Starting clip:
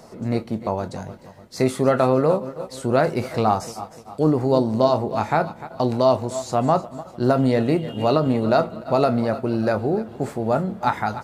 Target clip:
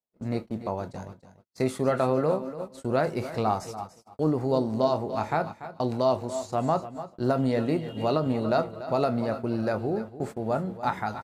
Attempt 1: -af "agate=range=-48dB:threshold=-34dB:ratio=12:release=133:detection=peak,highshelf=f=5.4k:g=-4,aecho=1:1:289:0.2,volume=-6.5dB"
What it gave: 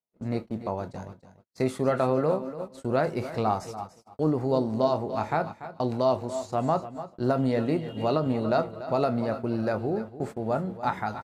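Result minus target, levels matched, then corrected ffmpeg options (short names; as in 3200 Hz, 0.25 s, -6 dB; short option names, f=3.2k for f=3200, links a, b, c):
8000 Hz band -2.5 dB
-af "agate=range=-48dB:threshold=-34dB:ratio=12:release=133:detection=peak,aecho=1:1:289:0.2,volume=-6.5dB"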